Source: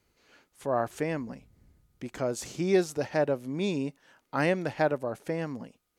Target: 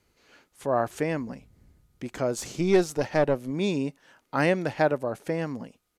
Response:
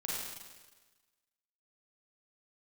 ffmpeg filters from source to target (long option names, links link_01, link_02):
-filter_complex "[0:a]aresample=32000,aresample=44100,asettb=1/sr,asplit=3[link_01][link_02][link_03];[link_01]atrim=end=2.374[link_04];[link_02]atrim=start=2.37:end=3.51,asetpts=PTS-STARTPTS,afade=type=in:duration=0.004:curve=qsin,afade=type=out:start_time=1.136:duration=0.004:curve=qsin,aeval=exprs='0.224*(cos(1*acos(clip(val(0)/0.224,-1,1)))-cos(1*PI/2))+0.0126*(cos(6*acos(clip(val(0)/0.224,-1,1)))-cos(6*PI/2))':channel_layout=same[link_05];[link_03]atrim=start=3.506[link_06];[link_04][link_05]acrossfade=duration=0.004:curve1=hsin:curve2=qsin[link_07];[link_07][link_06]acrossfade=duration=0.004:curve1=qsin:curve2=hsin,volume=3dB"